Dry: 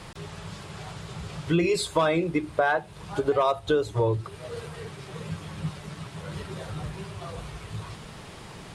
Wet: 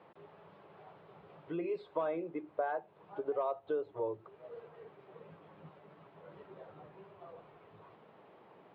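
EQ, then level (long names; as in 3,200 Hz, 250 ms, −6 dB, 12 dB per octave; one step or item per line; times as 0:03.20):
band-pass filter 540–2,400 Hz
high-frequency loss of the air 480 metres
parametric band 1,700 Hz −13 dB 2.4 octaves
−1.5 dB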